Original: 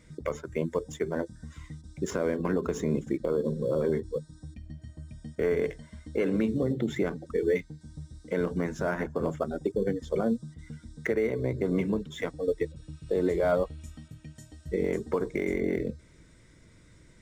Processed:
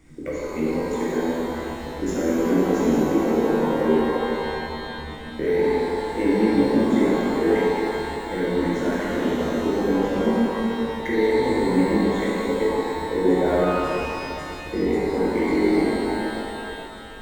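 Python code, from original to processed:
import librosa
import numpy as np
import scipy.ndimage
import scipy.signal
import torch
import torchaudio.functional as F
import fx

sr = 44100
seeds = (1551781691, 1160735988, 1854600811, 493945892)

y = fx.graphic_eq(x, sr, hz=(125, 250, 1000, 2000, 4000), db=(-10, 7, -12, 4, -6))
y = fx.dmg_noise_colour(y, sr, seeds[0], colour='brown', level_db=-54.0)
y = fx.rev_shimmer(y, sr, seeds[1], rt60_s=2.9, semitones=12, shimmer_db=-8, drr_db=-7.5)
y = y * 10.0 ** (-1.0 / 20.0)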